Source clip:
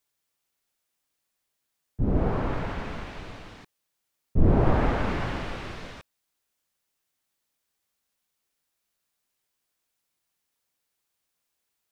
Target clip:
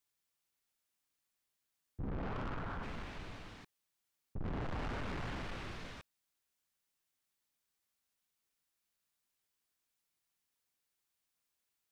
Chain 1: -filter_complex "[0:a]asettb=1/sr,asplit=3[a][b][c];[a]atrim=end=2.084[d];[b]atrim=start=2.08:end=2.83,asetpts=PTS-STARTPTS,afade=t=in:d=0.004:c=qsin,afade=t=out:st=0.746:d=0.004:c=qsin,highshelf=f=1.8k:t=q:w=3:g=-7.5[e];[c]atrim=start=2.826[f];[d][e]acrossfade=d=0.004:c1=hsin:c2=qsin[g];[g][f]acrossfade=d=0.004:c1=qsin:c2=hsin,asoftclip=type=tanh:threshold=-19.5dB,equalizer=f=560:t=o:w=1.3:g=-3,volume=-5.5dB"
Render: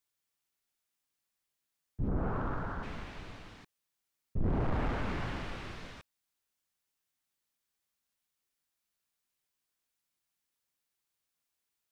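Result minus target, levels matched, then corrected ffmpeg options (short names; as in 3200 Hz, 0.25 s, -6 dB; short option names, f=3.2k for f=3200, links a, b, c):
soft clip: distortion -7 dB
-filter_complex "[0:a]asettb=1/sr,asplit=3[a][b][c];[a]atrim=end=2.084[d];[b]atrim=start=2.08:end=2.83,asetpts=PTS-STARTPTS,afade=t=in:d=0.004:c=qsin,afade=t=out:st=0.746:d=0.004:c=qsin,highshelf=f=1.8k:t=q:w=3:g=-7.5[e];[c]atrim=start=2.826[f];[d][e]acrossfade=d=0.004:c1=hsin:c2=qsin[g];[g][f]acrossfade=d=0.004:c1=qsin:c2=hsin,asoftclip=type=tanh:threshold=-31dB,equalizer=f=560:t=o:w=1.3:g=-3,volume=-5.5dB"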